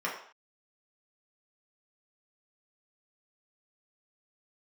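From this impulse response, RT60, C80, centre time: non-exponential decay, 9.0 dB, 31 ms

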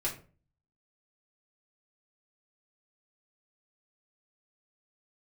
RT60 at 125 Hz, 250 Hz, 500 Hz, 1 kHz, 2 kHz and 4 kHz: 0.65, 0.50, 0.45, 0.35, 0.30, 0.25 seconds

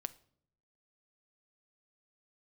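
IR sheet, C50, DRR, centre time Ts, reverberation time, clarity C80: 19.0 dB, 13.5 dB, 2 ms, non-exponential decay, 23.0 dB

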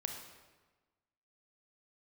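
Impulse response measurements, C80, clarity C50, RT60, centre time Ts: 6.5 dB, 5.0 dB, 1.3 s, 37 ms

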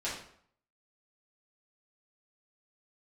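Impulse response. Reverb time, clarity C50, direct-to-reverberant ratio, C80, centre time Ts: 0.60 s, 3.5 dB, −9.0 dB, 8.0 dB, 41 ms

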